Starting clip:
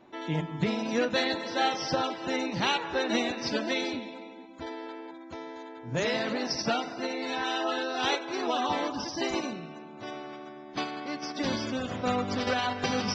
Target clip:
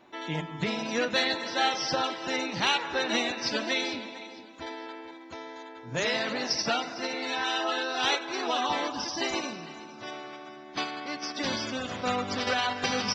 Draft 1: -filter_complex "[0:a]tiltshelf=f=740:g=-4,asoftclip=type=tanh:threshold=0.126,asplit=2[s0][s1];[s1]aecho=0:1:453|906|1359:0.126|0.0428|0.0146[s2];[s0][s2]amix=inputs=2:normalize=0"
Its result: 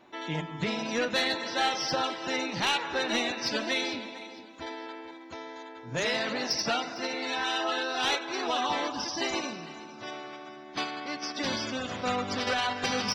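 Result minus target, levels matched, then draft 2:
saturation: distortion +13 dB
-filter_complex "[0:a]tiltshelf=f=740:g=-4,asoftclip=type=tanh:threshold=0.335,asplit=2[s0][s1];[s1]aecho=0:1:453|906|1359:0.126|0.0428|0.0146[s2];[s0][s2]amix=inputs=2:normalize=0"

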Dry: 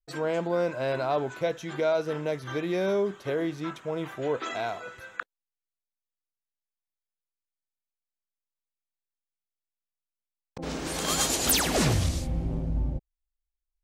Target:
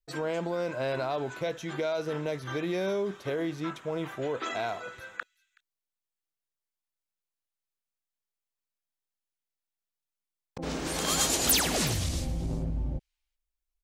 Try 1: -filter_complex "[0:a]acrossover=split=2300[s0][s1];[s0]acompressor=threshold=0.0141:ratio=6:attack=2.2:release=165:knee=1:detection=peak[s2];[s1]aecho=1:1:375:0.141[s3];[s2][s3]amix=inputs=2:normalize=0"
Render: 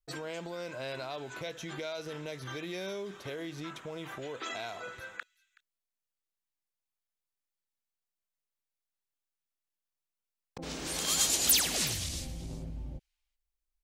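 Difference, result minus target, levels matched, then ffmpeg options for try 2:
compression: peak gain reduction +9 dB
-filter_complex "[0:a]acrossover=split=2300[s0][s1];[s0]acompressor=threshold=0.0501:ratio=6:attack=2.2:release=165:knee=1:detection=peak[s2];[s1]aecho=1:1:375:0.141[s3];[s2][s3]amix=inputs=2:normalize=0"

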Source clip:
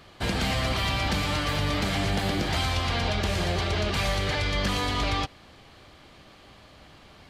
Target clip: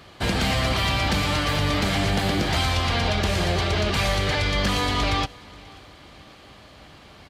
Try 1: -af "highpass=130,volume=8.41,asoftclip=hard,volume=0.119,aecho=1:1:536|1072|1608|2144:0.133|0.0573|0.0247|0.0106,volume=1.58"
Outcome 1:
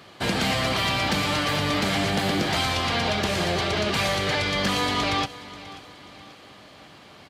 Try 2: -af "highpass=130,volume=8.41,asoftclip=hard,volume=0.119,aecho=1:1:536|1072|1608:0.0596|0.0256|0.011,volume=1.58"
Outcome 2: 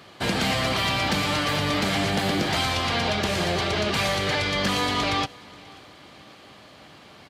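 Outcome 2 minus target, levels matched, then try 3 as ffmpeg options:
125 Hz band -4.0 dB
-af "highpass=34,volume=8.41,asoftclip=hard,volume=0.119,aecho=1:1:536|1072|1608:0.0596|0.0256|0.011,volume=1.58"

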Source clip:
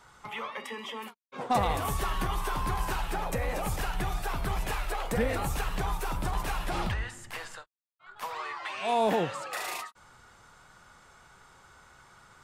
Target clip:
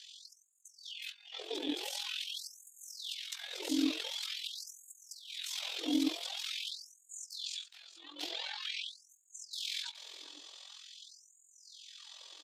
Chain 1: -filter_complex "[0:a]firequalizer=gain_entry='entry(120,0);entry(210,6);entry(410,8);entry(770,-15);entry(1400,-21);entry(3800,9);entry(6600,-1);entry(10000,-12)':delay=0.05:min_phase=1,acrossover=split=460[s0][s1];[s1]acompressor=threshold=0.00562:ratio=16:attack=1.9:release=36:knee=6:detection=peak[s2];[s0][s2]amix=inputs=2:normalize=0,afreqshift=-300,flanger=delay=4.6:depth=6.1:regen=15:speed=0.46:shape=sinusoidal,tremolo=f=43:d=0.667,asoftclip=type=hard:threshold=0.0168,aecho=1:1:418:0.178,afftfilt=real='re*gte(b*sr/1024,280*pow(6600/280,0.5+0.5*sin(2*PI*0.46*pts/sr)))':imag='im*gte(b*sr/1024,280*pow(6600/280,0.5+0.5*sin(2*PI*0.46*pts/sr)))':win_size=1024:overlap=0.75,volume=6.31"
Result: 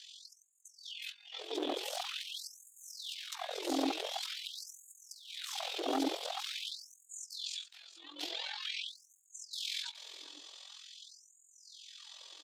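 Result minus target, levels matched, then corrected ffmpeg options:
hard clipper: distortion +24 dB
-filter_complex "[0:a]firequalizer=gain_entry='entry(120,0);entry(210,6);entry(410,8);entry(770,-15);entry(1400,-21);entry(3800,9);entry(6600,-1);entry(10000,-12)':delay=0.05:min_phase=1,acrossover=split=460[s0][s1];[s1]acompressor=threshold=0.00562:ratio=16:attack=1.9:release=36:knee=6:detection=peak[s2];[s0][s2]amix=inputs=2:normalize=0,afreqshift=-300,flanger=delay=4.6:depth=6.1:regen=15:speed=0.46:shape=sinusoidal,tremolo=f=43:d=0.667,asoftclip=type=hard:threshold=0.0562,aecho=1:1:418:0.178,afftfilt=real='re*gte(b*sr/1024,280*pow(6600/280,0.5+0.5*sin(2*PI*0.46*pts/sr)))':imag='im*gte(b*sr/1024,280*pow(6600/280,0.5+0.5*sin(2*PI*0.46*pts/sr)))':win_size=1024:overlap=0.75,volume=6.31"

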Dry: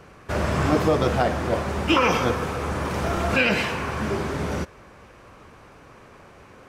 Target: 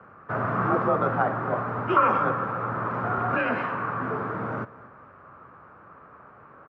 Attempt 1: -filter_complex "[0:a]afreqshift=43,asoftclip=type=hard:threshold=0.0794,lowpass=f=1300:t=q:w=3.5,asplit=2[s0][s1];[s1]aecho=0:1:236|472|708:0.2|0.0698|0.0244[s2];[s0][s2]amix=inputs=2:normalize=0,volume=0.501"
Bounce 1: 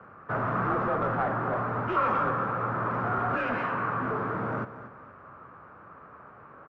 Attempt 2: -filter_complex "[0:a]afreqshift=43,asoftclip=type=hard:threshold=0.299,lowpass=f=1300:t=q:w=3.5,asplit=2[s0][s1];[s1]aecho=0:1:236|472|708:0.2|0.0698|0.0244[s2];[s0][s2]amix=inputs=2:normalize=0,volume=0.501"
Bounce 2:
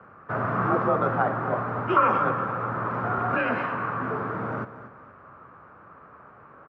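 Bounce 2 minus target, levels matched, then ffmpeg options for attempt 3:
echo-to-direct +6.5 dB
-filter_complex "[0:a]afreqshift=43,asoftclip=type=hard:threshold=0.299,lowpass=f=1300:t=q:w=3.5,asplit=2[s0][s1];[s1]aecho=0:1:236|472|708:0.0944|0.033|0.0116[s2];[s0][s2]amix=inputs=2:normalize=0,volume=0.501"

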